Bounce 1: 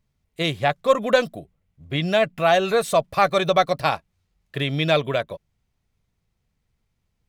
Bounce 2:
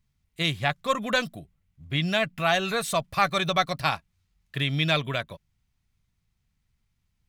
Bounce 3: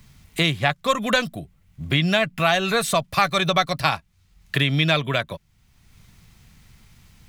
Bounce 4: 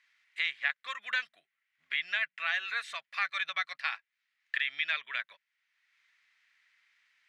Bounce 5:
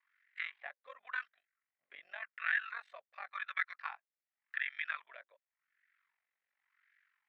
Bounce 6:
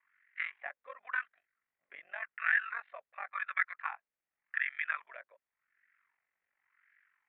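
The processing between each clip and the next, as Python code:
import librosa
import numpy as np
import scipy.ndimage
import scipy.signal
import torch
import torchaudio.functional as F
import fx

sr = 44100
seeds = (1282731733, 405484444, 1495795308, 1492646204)

y1 = fx.peak_eq(x, sr, hz=500.0, db=-11.0, octaves=1.5)
y2 = fx.band_squash(y1, sr, depth_pct=70)
y2 = y2 * librosa.db_to_amplitude(4.5)
y3 = fx.ladder_bandpass(y2, sr, hz=2100.0, resonance_pct=55)
y4 = y3 * np.sin(2.0 * np.pi * 23.0 * np.arange(len(y3)) / sr)
y4 = fx.cheby_harmonics(y4, sr, harmonics=(2,), levels_db=(-29,), full_scale_db=-15.5)
y4 = fx.wah_lfo(y4, sr, hz=0.9, low_hz=510.0, high_hz=1700.0, q=3.6)
y4 = y4 * librosa.db_to_amplitude(4.5)
y5 = scipy.signal.sosfilt(scipy.signal.butter(4, 2500.0, 'lowpass', fs=sr, output='sos'), y4)
y5 = y5 * librosa.db_to_amplitude(4.5)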